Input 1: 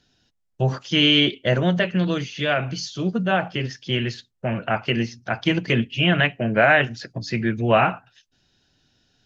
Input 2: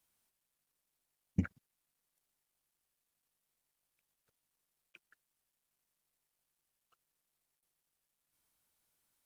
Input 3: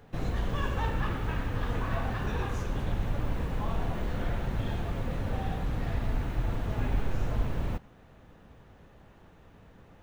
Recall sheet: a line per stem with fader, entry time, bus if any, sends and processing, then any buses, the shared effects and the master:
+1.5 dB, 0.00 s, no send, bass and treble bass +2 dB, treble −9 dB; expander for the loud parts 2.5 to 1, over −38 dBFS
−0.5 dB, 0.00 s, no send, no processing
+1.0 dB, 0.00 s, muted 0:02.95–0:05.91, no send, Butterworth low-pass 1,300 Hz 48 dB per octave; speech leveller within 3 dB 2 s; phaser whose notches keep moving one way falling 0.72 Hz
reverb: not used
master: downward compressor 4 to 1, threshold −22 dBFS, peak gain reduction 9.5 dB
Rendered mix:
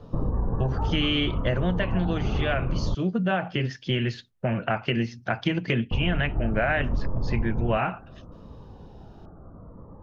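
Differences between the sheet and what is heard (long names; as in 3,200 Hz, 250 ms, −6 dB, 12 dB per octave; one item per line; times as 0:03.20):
stem 1: missing expander for the loud parts 2.5 to 1, over −38 dBFS
stem 2 −0.5 dB → −11.5 dB
stem 3 +1.0 dB → +10.0 dB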